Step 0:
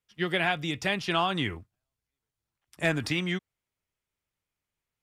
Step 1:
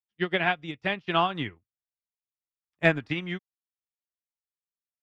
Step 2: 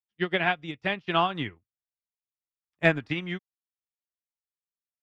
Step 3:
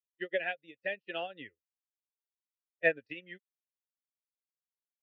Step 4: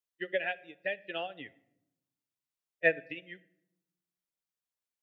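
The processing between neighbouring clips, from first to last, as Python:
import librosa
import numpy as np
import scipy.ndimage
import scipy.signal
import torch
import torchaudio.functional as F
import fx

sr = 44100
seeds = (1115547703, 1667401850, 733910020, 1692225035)

y1 = scipy.signal.sosfilt(scipy.signal.butter(2, 3300.0, 'lowpass', fs=sr, output='sos'), x)
y1 = fx.upward_expand(y1, sr, threshold_db=-45.0, expansion=2.5)
y1 = y1 * 10.0 ** (6.5 / 20.0)
y2 = y1
y3 = fx.bin_expand(y2, sr, power=1.5)
y3 = fx.vowel_filter(y3, sr, vowel='e')
y3 = y3 * 10.0 ** (5.0 / 20.0)
y4 = fx.room_shoebox(y3, sr, seeds[0], volume_m3=2400.0, walls='furnished', distance_m=0.46)
y4 = y4 * 10.0 ** (1.0 / 20.0)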